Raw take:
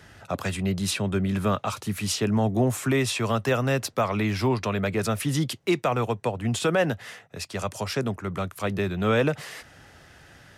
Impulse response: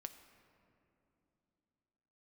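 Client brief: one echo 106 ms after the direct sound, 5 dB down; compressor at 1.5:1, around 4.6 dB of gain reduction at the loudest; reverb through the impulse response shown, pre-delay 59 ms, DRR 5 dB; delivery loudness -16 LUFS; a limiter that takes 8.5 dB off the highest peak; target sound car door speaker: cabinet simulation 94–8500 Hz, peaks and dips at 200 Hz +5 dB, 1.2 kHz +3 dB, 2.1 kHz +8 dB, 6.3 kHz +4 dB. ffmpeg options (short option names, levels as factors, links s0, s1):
-filter_complex "[0:a]acompressor=threshold=0.0282:ratio=1.5,alimiter=level_in=1.12:limit=0.0631:level=0:latency=1,volume=0.891,aecho=1:1:106:0.562,asplit=2[s0][s1];[1:a]atrim=start_sample=2205,adelay=59[s2];[s1][s2]afir=irnorm=-1:irlink=0,volume=0.944[s3];[s0][s3]amix=inputs=2:normalize=0,highpass=94,equalizer=f=200:t=q:w=4:g=5,equalizer=f=1200:t=q:w=4:g=3,equalizer=f=2100:t=q:w=4:g=8,equalizer=f=6300:t=q:w=4:g=4,lowpass=f=8500:w=0.5412,lowpass=f=8500:w=1.3066,volume=5.31"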